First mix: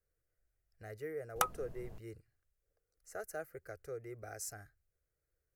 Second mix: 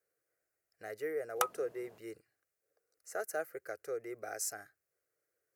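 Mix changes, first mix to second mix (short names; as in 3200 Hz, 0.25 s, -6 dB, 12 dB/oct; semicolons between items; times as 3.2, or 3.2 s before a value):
speech +6.0 dB; master: add HPF 320 Hz 12 dB/oct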